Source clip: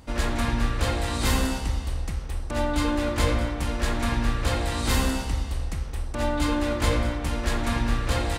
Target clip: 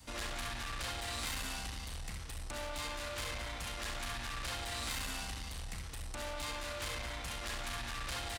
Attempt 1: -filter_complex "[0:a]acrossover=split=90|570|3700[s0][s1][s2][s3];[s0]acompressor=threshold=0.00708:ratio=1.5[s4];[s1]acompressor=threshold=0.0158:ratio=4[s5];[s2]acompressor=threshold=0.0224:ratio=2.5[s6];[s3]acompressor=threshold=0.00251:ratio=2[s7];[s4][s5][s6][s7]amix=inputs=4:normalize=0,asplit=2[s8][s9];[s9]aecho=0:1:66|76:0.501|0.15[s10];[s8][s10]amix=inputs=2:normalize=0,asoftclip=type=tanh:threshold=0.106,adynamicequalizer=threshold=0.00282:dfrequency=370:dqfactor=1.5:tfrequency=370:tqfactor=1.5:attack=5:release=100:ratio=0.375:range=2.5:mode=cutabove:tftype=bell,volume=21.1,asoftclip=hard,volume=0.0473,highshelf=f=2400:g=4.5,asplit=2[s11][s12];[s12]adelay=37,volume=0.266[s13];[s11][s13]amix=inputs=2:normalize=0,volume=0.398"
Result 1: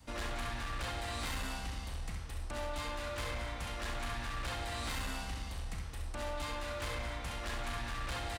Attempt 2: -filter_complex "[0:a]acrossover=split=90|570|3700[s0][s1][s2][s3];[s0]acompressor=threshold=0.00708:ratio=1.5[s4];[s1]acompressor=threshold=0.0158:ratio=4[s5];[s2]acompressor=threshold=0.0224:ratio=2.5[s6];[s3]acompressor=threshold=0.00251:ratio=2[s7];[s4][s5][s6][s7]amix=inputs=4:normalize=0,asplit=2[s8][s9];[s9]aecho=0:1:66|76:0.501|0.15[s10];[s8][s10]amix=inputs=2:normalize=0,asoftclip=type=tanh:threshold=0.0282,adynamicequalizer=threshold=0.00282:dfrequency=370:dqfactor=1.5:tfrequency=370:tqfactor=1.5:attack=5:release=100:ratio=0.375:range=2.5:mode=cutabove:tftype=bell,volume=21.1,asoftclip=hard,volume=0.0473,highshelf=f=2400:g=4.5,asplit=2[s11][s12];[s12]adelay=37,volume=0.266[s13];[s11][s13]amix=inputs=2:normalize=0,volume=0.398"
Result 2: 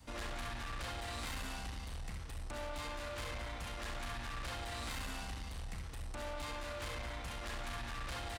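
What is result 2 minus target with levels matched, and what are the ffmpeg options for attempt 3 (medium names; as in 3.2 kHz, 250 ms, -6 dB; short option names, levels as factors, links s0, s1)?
4 kHz band -2.5 dB
-filter_complex "[0:a]acrossover=split=90|570|3700[s0][s1][s2][s3];[s0]acompressor=threshold=0.00708:ratio=1.5[s4];[s1]acompressor=threshold=0.0158:ratio=4[s5];[s2]acompressor=threshold=0.0224:ratio=2.5[s6];[s3]acompressor=threshold=0.00251:ratio=2[s7];[s4][s5][s6][s7]amix=inputs=4:normalize=0,asplit=2[s8][s9];[s9]aecho=0:1:66|76:0.501|0.15[s10];[s8][s10]amix=inputs=2:normalize=0,asoftclip=type=tanh:threshold=0.0282,adynamicequalizer=threshold=0.00282:dfrequency=370:dqfactor=1.5:tfrequency=370:tqfactor=1.5:attack=5:release=100:ratio=0.375:range=2.5:mode=cutabove:tftype=bell,volume=21.1,asoftclip=hard,volume=0.0473,highshelf=f=2400:g=12.5,asplit=2[s11][s12];[s12]adelay=37,volume=0.266[s13];[s11][s13]amix=inputs=2:normalize=0,volume=0.398"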